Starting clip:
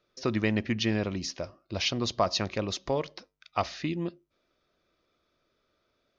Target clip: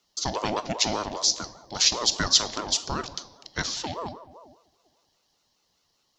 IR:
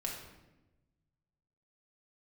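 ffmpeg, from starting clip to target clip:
-filter_complex "[0:a]highshelf=f=3500:t=q:w=1.5:g=13.5,asplit=2[s0][s1];[1:a]atrim=start_sample=2205[s2];[s1][s2]afir=irnorm=-1:irlink=0,volume=0.447[s3];[s0][s3]amix=inputs=2:normalize=0,aeval=exprs='val(0)*sin(2*PI*630*n/s+630*0.35/5*sin(2*PI*5*n/s))':c=same,volume=0.841"

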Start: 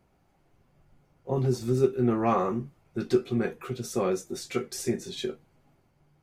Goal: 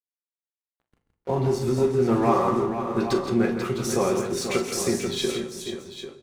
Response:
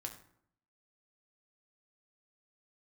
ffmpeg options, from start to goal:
-filter_complex "[0:a]equalizer=f=970:t=o:w=0.32:g=4.5,bandreject=f=60:t=h:w=6,bandreject=f=120:t=h:w=6,bandreject=f=180:t=h:w=6,bandreject=f=240:t=h:w=6,asplit=2[s0][s1];[s1]acompressor=threshold=0.0112:ratio=6,volume=0.891[s2];[s0][s2]amix=inputs=2:normalize=0,alimiter=limit=0.133:level=0:latency=1:release=271,aeval=exprs='sgn(val(0))*max(abs(val(0))-0.00398,0)':c=same,aecho=1:1:43|136|166|488|793|813:0.266|0.2|0.398|0.376|0.282|0.119,asplit=2[s3][s4];[1:a]atrim=start_sample=2205,asetrate=23373,aresample=44100[s5];[s4][s5]afir=irnorm=-1:irlink=0,volume=0.891[s6];[s3][s6]amix=inputs=2:normalize=0"

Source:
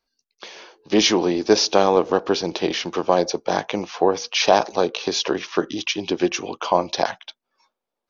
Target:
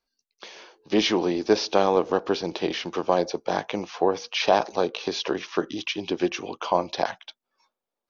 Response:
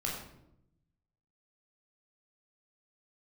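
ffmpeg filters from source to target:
-filter_complex "[0:a]acrossover=split=4800[s0][s1];[s1]acompressor=threshold=0.00891:ratio=4:attack=1:release=60[s2];[s0][s2]amix=inputs=2:normalize=0,volume=0.631"

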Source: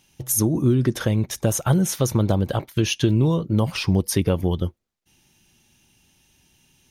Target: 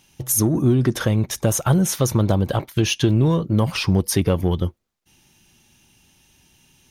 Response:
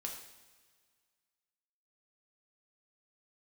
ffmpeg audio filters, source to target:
-filter_complex "[0:a]equalizer=f=1100:t=o:w=0.77:g=2,asplit=2[s0][s1];[s1]asoftclip=type=tanh:threshold=0.0708,volume=0.473[s2];[s0][s2]amix=inputs=2:normalize=0"

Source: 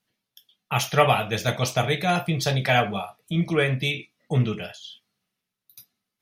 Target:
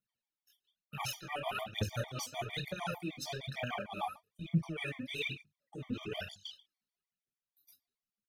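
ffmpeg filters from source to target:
-af "agate=range=0.224:threshold=0.01:ratio=16:detection=peak,atempo=0.75,equalizer=f=490:t=o:w=0.77:g=-3,areverse,acompressor=threshold=0.0316:ratio=20,areverse,flanger=delay=19:depth=6.3:speed=2.2,bandreject=f=50:t=h:w=6,bandreject=f=100:t=h:w=6,bandreject=f=150:t=h:w=6,bandreject=f=200:t=h:w=6,aphaser=in_gain=1:out_gain=1:delay=4.1:decay=0.7:speed=1.1:type=triangular,afftfilt=real='re*gt(sin(2*PI*6.6*pts/sr)*(1-2*mod(floor(b*sr/1024/610),2)),0)':imag='im*gt(sin(2*PI*6.6*pts/sr)*(1-2*mod(floor(b*sr/1024/610),2)),0)':win_size=1024:overlap=0.75"

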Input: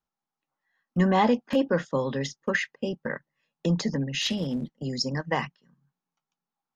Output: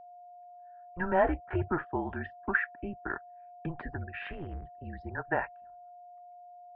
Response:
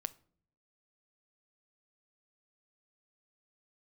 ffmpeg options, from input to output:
-af "equalizer=f=470:w=1.8:g=-8,highpass=f=320:t=q:w=0.5412,highpass=f=320:t=q:w=1.307,lowpass=f=2200:t=q:w=0.5176,lowpass=f=2200:t=q:w=0.7071,lowpass=f=2200:t=q:w=1.932,afreqshift=-180,aeval=exprs='val(0)+0.00398*sin(2*PI*710*n/s)':c=same"

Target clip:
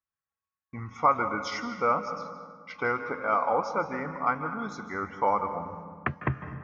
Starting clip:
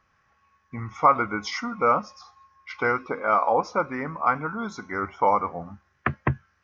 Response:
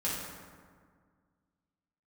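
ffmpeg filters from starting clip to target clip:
-filter_complex "[0:a]agate=range=0.0447:threshold=0.00316:ratio=16:detection=peak,asplit=2[s0][s1];[1:a]atrim=start_sample=2205,adelay=150[s2];[s1][s2]afir=irnorm=-1:irlink=0,volume=0.168[s3];[s0][s3]amix=inputs=2:normalize=0,volume=0.596"

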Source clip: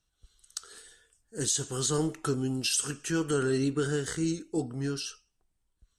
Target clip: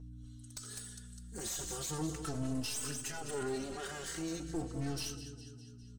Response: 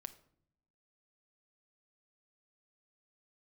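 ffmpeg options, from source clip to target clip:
-filter_complex "[0:a]asplit=2[s0][s1];[s1]equalizer=f=5700:t=o:w=1.7:g=4.5[s2];[1:a]atrim=start_sample=2205,asetrate=22050,aresample=44100,highshelf=f=9800:g=8.5[s3];[s2][s3]afir=irnorm=-1:irlink=0,volume=0.562[s4];[s0][s4]amix=inputs=2:normalize=0,aeval=exprs='val(0)+0.00891*(sin(2*PI*60*n/s)+sin(2*PI*2*60*n/s)/2+sin(2*PI*3*60*n/s)/3+sin(2*PI*4*60*n/s)/4+sin(2*PI*5*60*n/s)/5)':c=same,aecho=1:1:203|406|609|812|1015:0.178|0.0996|0.0558|0.0312|0.0175,alimiter=limit=0.0841:level=0:latency=1:release=36,asettb=1/sr,asplit=3[s5][s6][s7];[s5]atrim=end=0.584[s8];[s6]atrim=start=0.58:end=1.37,asetpts=PTS-STARTPTS,afade=t=in:d=0.004:c=qsin,afade=t=out:st=0.786:d=0.004:c=qsin,highshelf=f=9100:g=11[s9];[s7]atrim=start=1.366[s10];[s8][s9]acrossfade=d=0.004:c1=hsin:c2=qsin[s11];[s11][s10]acrossfade=d=0.004:c1=qsin:c2=hsin,aeval=exprs='clip(val(0),-1,0.0158)':c=same,asettb=1/sr,asplit=3[s12][s13][s14];[s12]atrim=end=3.724[s15];[s13]atrim=start=3.72:end=4.4,asetpts=PTS-STARTPTS,afade=t=in:d=0.004:c=qsin,afade=t=out:st=0.676:d=0.004:c=qsin,asplit=2[s16][s17];[s17]highpass=f=720:p=1,volume=2.82,asoftclip=type=tanh:threshold=0.0422[s18];[s16][s18]amix=inputs=2:normalize=0,lowpass=f=6900:p=1,volume=0.501[s19];[s14]atrim=start=4.396[s20];[s15][s19]acrossfade=d=0.004:c1=hsin:c2=qsin[s21];[s21][s20]acrossfade=d=0.004:c1=qsin:c2=hsin,asplit=2[s22][s23];[s23]adelay=4.1,afreqshift=-0.4[s24];[s22][s24]amix=inputs=2:normalize=1,volume=0.708"

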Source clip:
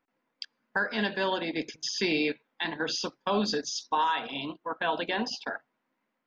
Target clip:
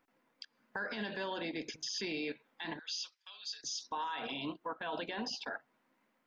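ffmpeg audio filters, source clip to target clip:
-filter_complex "[0:a]alimiter=level_in=3.16:limit=0.0631:level=0:latency=1:release=171,volume=0.316,asettb=1/sr,asplit=3[s0][s1][s2];[s0]atrim=end=2.794[s3];[s1]atrim=start=2.79:end=3.64,asetpts=PTS-STARTPTS,afade=t=in:d=0.004:c=qsin,afade=t=out:st=0.846:d=0.004:c=qsin,asuperpass=centerf=4800:order=4:qfactor=0.77[s4];[s2]atrim=start=3.636[s5];[s3][s4]acrossfade=d=0.004:c1=hsin:c2=qsin[s6];[s6][s5]acrossfade=d=0.004:c1=qsin:c2=hsin,volume=1.58"

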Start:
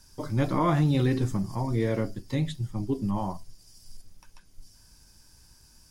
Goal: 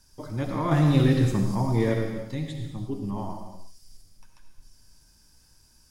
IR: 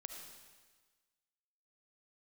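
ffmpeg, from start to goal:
-filter_complex "[0:a]asettb=1/sr,asplit=3[s0][s1][s2];[s0]atrim=end=0.714[s3];[s1]atrim=start=0.71:end=1.94,asetpts=PTS-STARTPTS,afade=t=in:d=0.004:c=qsin,afade=t=out:st=1.226:d=0.004:c=qsin,acontrast=75[s4];[s2]atrim=start=1.936[s5];[s3][s4]acrossfade=d=0.004:c1=hsin:c2=qsin[s6];[s6][s5]acrossfade=d=0.004:c1=qsin:c2=hsin[s7];[1:a]atrim=start_sample=2205,afade=t=out:st=0.42:d=0.01,atrim=end_sample=18963[s8];[s7][s8]afir=irnorm=-1:irlink=0,volume=1.19"

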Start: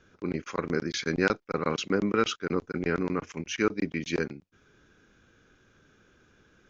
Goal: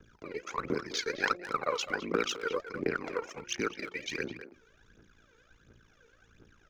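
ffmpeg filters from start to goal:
-filter_complex "[0:a]aeval=exprs='val(0)*sin(2*PI*28*n/s)':c=same,acrossover=split=330[s0][s1];[s0]acompressor=threshold=0.00398:ratio=6[s2];[s2][s1]amix=inputs=2:normalize=0,bandreject=f=176.8:t=h:w=4,bandreject=f=353.6:t=h:w=4,bandreject=f=530.4:t=h:w=4,bandreject=f=707.2:t=h:w=4,bandreject=f=884:t=h:w=4,aphaser=in_gain=1:out_gain=1:delay=2.3:decay=0.76:speed=1.4:type=triangular,asplit=2[s3][s4];[s4]adelay=210,highpass=300,lowpass=3400,asoftclip=type=hard:threshold=0.0562,volume=0.316[s5];[s3][s5]amix=inputs=2:normalize=0,volume=0.794"

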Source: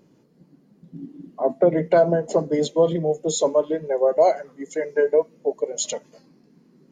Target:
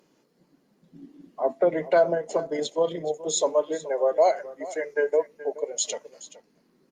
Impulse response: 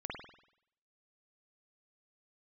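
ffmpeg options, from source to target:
-filter_complex "[0:a]highpass=f=840:p=1,asettb=1/sr,asplit=3[s0][s1][s2];[s0]atrim=end=2.144[s3];[s1]atrim=start=2.14:end=3.28,asetpts=PTS-STARTPTS,afade=t=in:d=0.004:c=qsin,afade=t=out:st=1.136:d=0.004:c=qsin,tremolo=f=31:d=0.333[s4];[s2]atrim=start=3.276[s5];[s3][s4]acrossfade=d=0.004:c1=hsin:c2=qsin[s6];[s6][s5]acrossfade=d=0.004:c1=qsin:c2=hsin,aecho=1:1:425:0.141,volume=1.19" -ar 48000 -c:a libopus -b:a 48k

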